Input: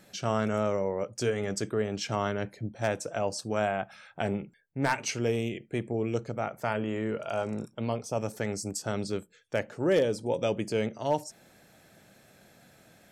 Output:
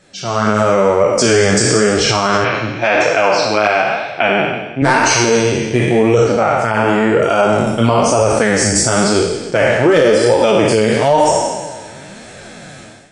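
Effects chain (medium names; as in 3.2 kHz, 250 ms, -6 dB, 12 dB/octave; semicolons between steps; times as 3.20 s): spectral sustain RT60 1.46 s; level rider gain up to 15.5 dB; 2.44–4.82 s: cabinet simulation 170–5000 Hz, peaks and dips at 200 Hz -7 dB, 430 Hz -4 dB, 2.4 kHz +10 dB; flange 0.97 Hz, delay 1.5 ms, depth 8.2 ms, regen -11%; dynamic bell 1.2 kHz, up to +4 dB, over -32 dBFS, Q 1.2; loudness maximiser +10 dB; trim -1 dB; MP3 40 kbps 24 kHz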